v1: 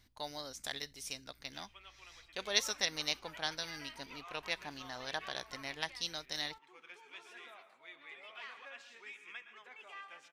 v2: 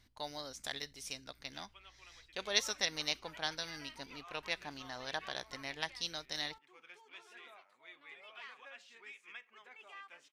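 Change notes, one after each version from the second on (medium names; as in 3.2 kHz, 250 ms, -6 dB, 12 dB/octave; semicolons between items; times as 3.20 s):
speech: add treble shelf 11 kHz -6.5 dB; reverb: off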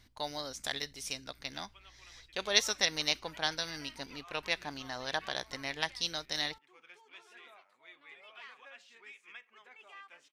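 speech +5.0 dB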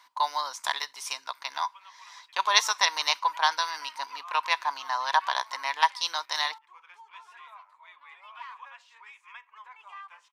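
speech +4.0 dB; master: add resonant high-pass 990 Hz, resonance Q 11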